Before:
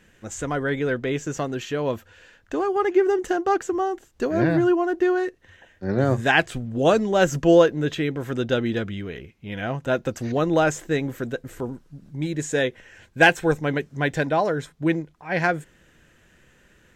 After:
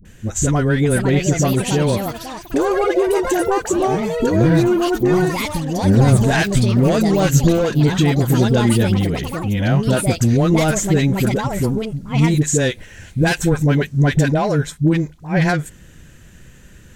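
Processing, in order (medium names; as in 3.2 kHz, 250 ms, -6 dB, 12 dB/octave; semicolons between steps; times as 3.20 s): saturation -13.5 dBFS, distortion -14 dB; phase dispersion highs, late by 53 ms, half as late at 570 Hz; compression, threshold -21 dBFS, peak gain reduction 7 dB; ever faster or slower copies 638 ms, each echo +5 st, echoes 3, each echo -6 dB; tone controls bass +12 dB, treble +9 dB; band-stop 5.2 kHz, Q 25; trim +5.5 dB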